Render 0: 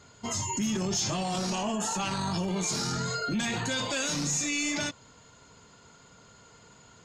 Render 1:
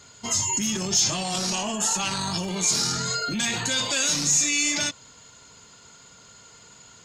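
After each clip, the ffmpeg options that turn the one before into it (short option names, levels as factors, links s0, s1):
-af "highshelf=f=2200:g=10.5"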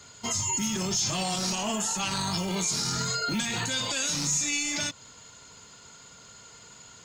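-filter_complex "[0:a]acrossover=split=220[s0][s1];[s0]acrusher=samples=39:mix=1:aa=0.000001[s2];[s1]alimiter=limit=0.1:level=0:latency=1:release=148[s3];[s2][s3]amix=inputs=2:normalize=0"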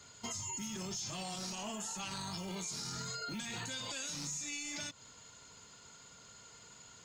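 -af "acompressor=threshold=0.0251:ratio=6,volume=0.473"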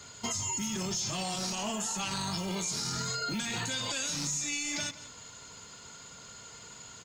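-af "aecho=1:1:171:0.15,volume=2.37"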